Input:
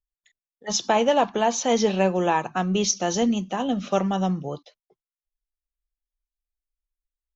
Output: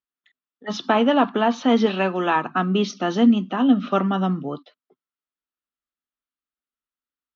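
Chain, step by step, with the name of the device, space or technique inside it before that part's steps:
0:01.86–0:02.36: spectral tilt +2 dB per octave
kitchen radio (loudspeaker in its box 170–3,700 Hz, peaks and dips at 260 Hz +10 dB, 530 Hz −6 dB, 820 Hz −4 dB, 1,300 Hz +8 dB, 2,300 Hz −4 dB)
level +3 dB

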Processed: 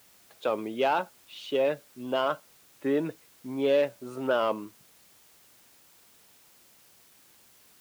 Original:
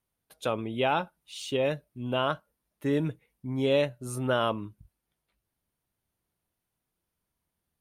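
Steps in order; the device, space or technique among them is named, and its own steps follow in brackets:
tape answering machine (band-pass filter 350–3,100 Hz; soft clipping −19 dBFS, distortion −18 dB; tape wow and flutter; white noise bed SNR 25 dB)
high-pass filter 100 Hz 6 dB per octave
low-shelf EQ 460 Hz +6 dB
level +1.5 dB

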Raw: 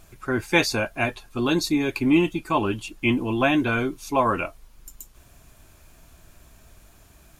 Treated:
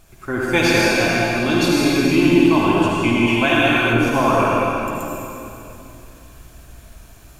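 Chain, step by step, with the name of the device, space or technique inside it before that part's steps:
tunnel (flutter between parallel walls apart 8.8 metres, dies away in 0.33 s; convolution reverb RT60 3.0 s, pre-delay 69 ms, DRR −5.5 dB)
0:03.27–0:03.93: tilt shelving filter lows −4.5 dB

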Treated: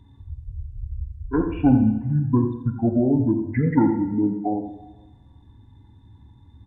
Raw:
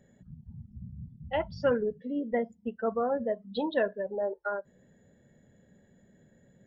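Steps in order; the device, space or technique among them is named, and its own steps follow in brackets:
monster voice (pitch shifter −11.5 semitones; low-shelf EQ 220 Hz +6 dB; single-tap delay 84 ms −10.5 dB; convolution reverb RT60 1.1 s, pre-delay 34 ms, DRR 8 dB)
level +6.5 dB

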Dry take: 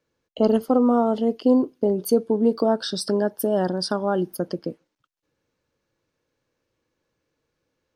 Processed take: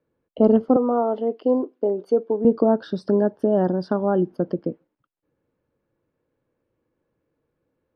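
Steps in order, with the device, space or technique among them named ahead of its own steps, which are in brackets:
0:00.76–0:02.45: high-pass filter 410 Hz 12 dB per octave
phone in a pocket (low-pass filter 3,200 Hz 12 dB per octave; parametric band 260 Hz +4 dB 3 octaves; high-shelf EQ 2,100 Hz −12 dB)

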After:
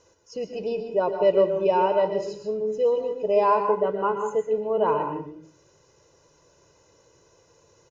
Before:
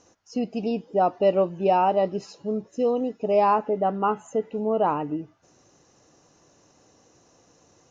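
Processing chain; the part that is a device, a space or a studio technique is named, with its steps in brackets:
microphone above a desk (comb filter 2 ms, depth 78%; convolution reverb RT60 0.50 s, pre-delay 115 ms, DRR 5.5 dB)
level −3 dB

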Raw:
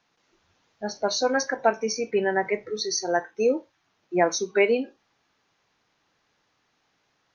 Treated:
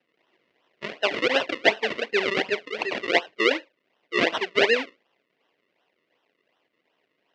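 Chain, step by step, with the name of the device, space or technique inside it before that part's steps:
circuit-bent sampling toy (sample-and-hold swept by an LFO 38×, swing 100% 2.7 Hz; loudspeaker in its box 400–4,800 Hz, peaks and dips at 810 Hz −4 dB, 1,300 Hz −5 dB, 2,000 Hz +9 dB, 2,800 Hz +7 dB)
level +2 dB

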